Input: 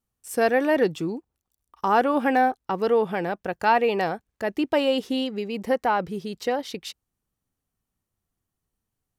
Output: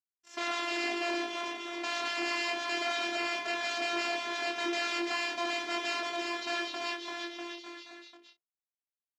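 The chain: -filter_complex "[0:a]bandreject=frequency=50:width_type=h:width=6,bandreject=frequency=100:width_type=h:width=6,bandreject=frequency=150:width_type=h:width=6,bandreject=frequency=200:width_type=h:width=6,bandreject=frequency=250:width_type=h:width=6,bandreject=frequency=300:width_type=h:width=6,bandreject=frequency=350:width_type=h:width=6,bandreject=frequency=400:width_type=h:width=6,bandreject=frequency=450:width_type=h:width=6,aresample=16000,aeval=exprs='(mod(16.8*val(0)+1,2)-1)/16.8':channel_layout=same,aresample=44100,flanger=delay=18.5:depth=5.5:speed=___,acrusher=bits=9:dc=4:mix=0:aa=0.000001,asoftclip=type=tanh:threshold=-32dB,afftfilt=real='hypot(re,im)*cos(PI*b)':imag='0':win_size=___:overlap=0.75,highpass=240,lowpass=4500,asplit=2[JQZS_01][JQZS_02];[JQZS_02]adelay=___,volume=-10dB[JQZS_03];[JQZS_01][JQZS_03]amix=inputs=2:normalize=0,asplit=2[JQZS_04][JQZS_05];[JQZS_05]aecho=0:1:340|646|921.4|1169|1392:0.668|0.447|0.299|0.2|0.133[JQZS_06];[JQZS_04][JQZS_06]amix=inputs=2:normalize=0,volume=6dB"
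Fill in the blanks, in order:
1.2, 512, 32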